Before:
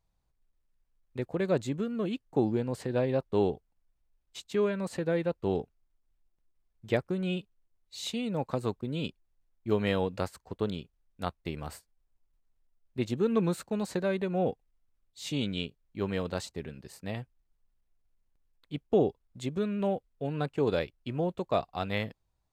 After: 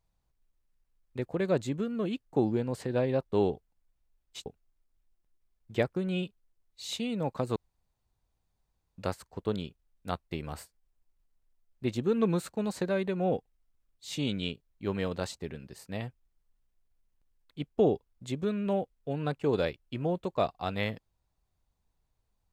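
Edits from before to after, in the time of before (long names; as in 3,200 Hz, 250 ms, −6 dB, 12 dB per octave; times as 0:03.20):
0:04.46–0:05.60: remove
0:08.70–0:10.12: fill with room tone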